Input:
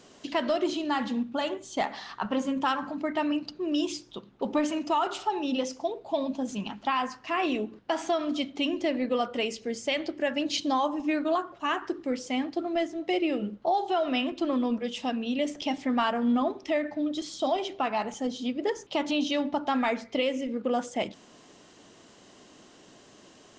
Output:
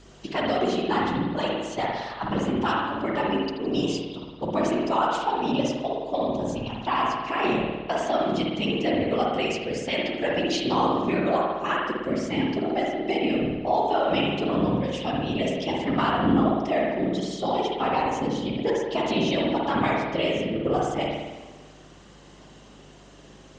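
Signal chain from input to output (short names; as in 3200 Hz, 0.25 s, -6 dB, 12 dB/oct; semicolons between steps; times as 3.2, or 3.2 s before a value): whisperiser; hum 50 Hz, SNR 23 dB; spring tank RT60 1.2 s, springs 54 ms, chirp 30 ms, DRR -1.5 dB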